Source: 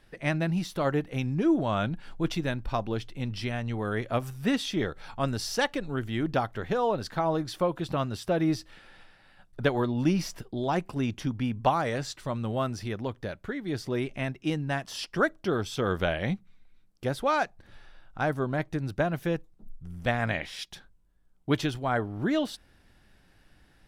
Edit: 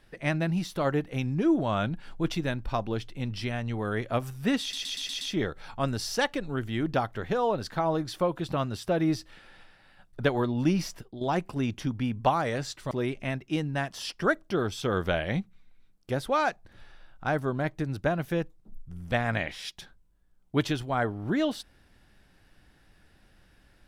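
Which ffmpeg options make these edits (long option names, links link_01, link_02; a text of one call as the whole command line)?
ffmpeg -i in.wav -filter_complex "[0:a]asplit=8[link_01][link_02][link_03][link_04][link_05][link_06][link_07][link_08];[link_01]atrim=end=4.732[link_09];[link_02]atrim=start=4.608:end=4.732[link_10];[link_03]atrim=start=4.608:end=4.732[link_11];[link_04]atrim=start=4.608:end=4.732[link_12];[link_05]atrim=start=4.608:end=4.732[link_13];[link_06]atrim=start=4.608:end=10.61,asetpts=PTS-STARTPTS,afade=type=out:start_time=5.632:duration=0.37:silence=0.316228[link_14];[link_07]atrim=start=10.61:end=12.312,asetpts=PTS-STARTPTS,afade=type=in:duration=0.004:curve=hsin:silence=0.316228[link_15];[link_08]atrim=start=13.848[link_16];[link_09][link_10]acrossfade=duration=0.004:curve1=hsin:curve2=hsin[link_17];[link_17][link_11]acrossfade=duration=0.004:curve1=hsin:curve2=hsin[link_18];[link_18][link_12]acrossfade=duration=0.004:curve1=hsin:curve2=hsin[link_19];[link_19][link_13]acrossfade=duration=0.004:curve1=hsin:curve2=hsin[link_20];[link_14][link_15]concat=n=2:v=0:a=1[link_21];[link_20][link_21]acrossfade=duration=0.004:curve1=hsin:curve2=hsin[link_22];[link_22][link_16]acrossfade=duration=0.004:curve1=hsin:curve2=hsin" out.wav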